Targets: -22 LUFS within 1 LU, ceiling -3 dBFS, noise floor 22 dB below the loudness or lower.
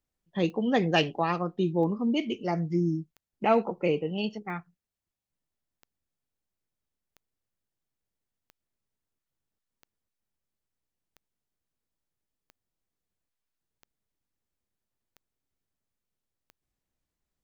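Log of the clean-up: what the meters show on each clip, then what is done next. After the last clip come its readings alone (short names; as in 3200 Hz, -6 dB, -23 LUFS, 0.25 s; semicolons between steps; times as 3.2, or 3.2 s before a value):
clicks 13; loudness -28.0 LUFS; peak -10.5 dBFS; loudness target -22.0 LUFS
-> de-click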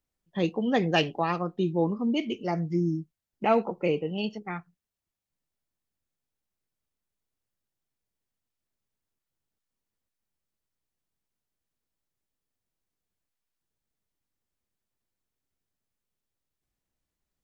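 clicks 0; loudness -28.0 LUFS; peak -10.5 dBFS; loudness target -22.0 LUFS
-> gain +6 dB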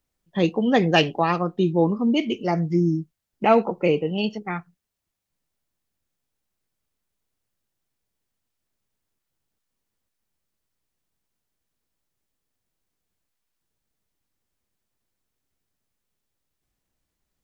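loudness -22.0 LUFS; peak -4.5 dBFS; noise floor -81 dBFS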